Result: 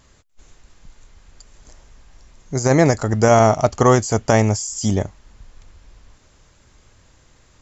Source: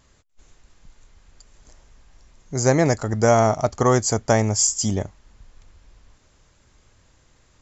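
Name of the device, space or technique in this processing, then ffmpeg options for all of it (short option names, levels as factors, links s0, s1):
de-esser from a sidechain: -filter_complex "[0:a]asettb=1/sr,asplit=3[s0][s1][s2];[s0]atrim=end=3.114[s3];[s1]atrim=start=3.11:end=4.53,asetpts=PTS-STARTPTS,afade=t=in:d=0.004:c=qsin,afade=t=out:st=1.416:d=0.004:c=qsin,equalizer=f=2800:t=o:w=0.3:g=6[s4];[s2]atrim=start=4.526[s5];[s3][s4]acrossfade=d=0.004:c1=hsin:c2=qsin[s6];[s6][s5]acrossfade=d=0.004:c1=qsin:c2=hsin,asplit=2[s7][s8];[s8]highpass=4300,apad=whole_len=335811[s9];[s7][s9]sidechaincompress=threshold=0.0316:ratio=12:attack=4.5:release=32,volume=1.68"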